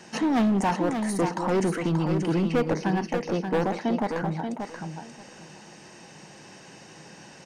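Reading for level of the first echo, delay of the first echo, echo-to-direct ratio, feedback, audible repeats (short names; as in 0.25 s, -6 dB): -6.5 dB, 0.582 s, -6.5 dB, 18%, 2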